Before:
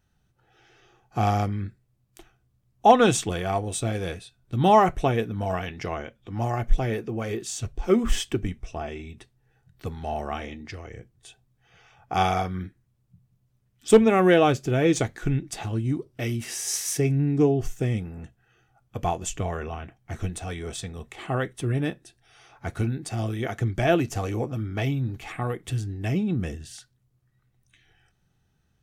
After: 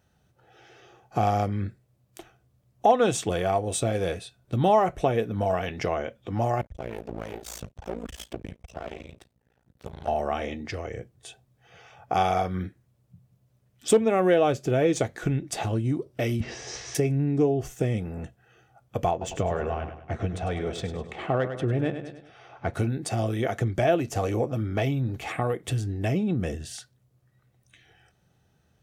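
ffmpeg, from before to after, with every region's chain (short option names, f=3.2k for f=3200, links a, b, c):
-filter_complex "[0:a]asettb=1/sr,asplit=3[a][b][c];[a]atrim=end=6.614[d];[b]atrim=start=6.61:end=10.08,asetpts=PTS-STARTPTS,afade=t=in:d=0.004:c=qsin,afade=t=out:st=3.466:d=0.004:c=qsin,acompressor=threshold=-30dB:ratio=4:attack=3.2:release=140:knee=1:detection=peak,aeval=exprs='max(val(0),0)':c=same,tremolo=f=56:d=0.974[e];[c]atrim=start=10.076[f];[d][e]acrossfade=d=0.004:c1=hsin:c2=qsin[g];[g][f]acrossfade=d=0.004:c1=qsin:c2=hsin,asettb=1/sr,asplit=3[h][i][j];[h]atrim=end=16.404[k];[i]atrim=start=16.4:end=16.95,asetpts=PTS-STARTPTS,afade=t=in:d=0.004:c=qsin,afade=t=out:st=0.546:d=0.004:c=qsin,lowpass=f=5.8k:w=0.5412,lowpass=f=5.8k:w=1.3066,aemphasis=mode=reproduction:type=riaa[l];[j]atrim=start=16.946[m];[k][l]acrossfade=d=0.004:c1=hsin:c2=qsin[n];[n][m]acrossfade=d=0.004:c1=qsin:c2=hsin,asettb=1/sr,asplit=3[o][p][q];[o]atrim=end=19.114[r];[p]atrim=start=19.11:end=22.74,asetpts=PTS-STARTPTS,afade=t=in:d=0.004:c=qsin,afade=t=out:st=3.626:d=0.004:c=qsin,adynamicsmooth=sensitivity=2:basefreq=3.5k,aecho=1:1:101|202|303|404:0.282|0.118|0.0497|0.0209,atrim=end_sample=160083[s];[q]atrim=start=22.736[t];[r][s]acrossfade=d=0.004:c1=hsin:c2=qsin[u];[u][t]acrossfade=d=0.004:c1=qsin:c2=hsin,highpass=59,equalizer=f=570:t=o:w=0.8:g=7.5,acompressor=threshold=-29dB:ratio=2,volume=3.5dB"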